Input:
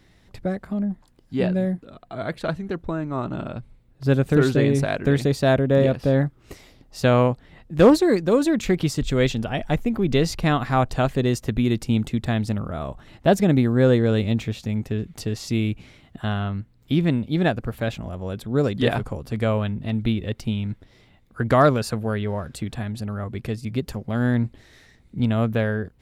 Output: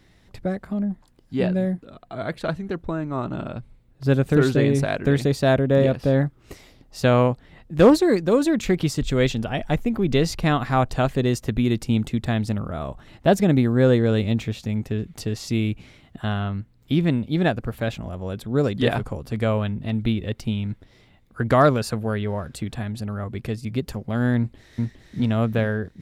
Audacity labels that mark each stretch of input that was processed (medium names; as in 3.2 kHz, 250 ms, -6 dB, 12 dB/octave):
24.370000	25.180000	echo throw 410 ms, feedback 45%, level -1.5 dB